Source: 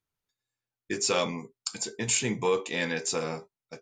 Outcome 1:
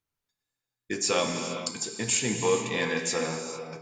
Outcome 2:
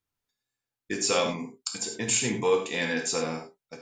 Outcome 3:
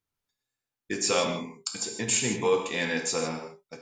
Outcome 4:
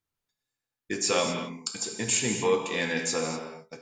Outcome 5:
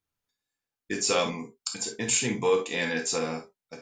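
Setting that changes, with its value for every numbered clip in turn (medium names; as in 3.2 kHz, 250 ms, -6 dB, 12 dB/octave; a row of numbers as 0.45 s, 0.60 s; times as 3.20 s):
gated-style reverb, gate: 480 ms, 120 ms, 180 ms, 270 ms, 80 ms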